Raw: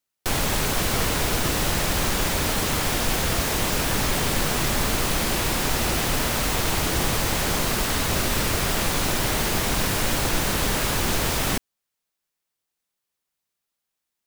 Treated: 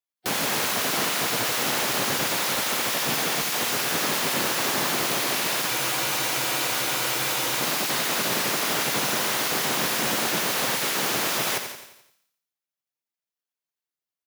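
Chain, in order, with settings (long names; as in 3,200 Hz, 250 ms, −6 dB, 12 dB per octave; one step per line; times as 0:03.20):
feedback echo with a high-pass in the loop 141 ms, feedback 34%, high-pass 190 Hz, level −12 dB
gate on every frequency bin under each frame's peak −10 dB weak
high-pass filter 120 Hz 24 dB per octave
parametric band 8,300 Hz −4 dB 0.27 octaves
on a send: repeating echo 87 ms, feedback 50%, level −8 dB
on the sum: frozen spectrum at 0:05.68, 1.92 s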